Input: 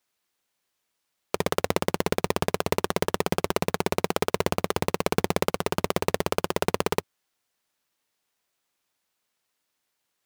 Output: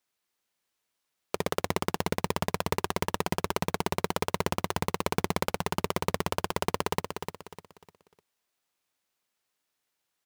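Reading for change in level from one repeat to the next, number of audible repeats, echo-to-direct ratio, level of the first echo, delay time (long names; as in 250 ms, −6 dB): −9.5 dB, 3, −6.5 dB, −7.0 dB, 301 ms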